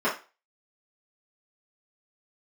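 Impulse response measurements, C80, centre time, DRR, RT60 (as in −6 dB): 15.5 dB, 26 ms, −11.0 dB, 0.30 s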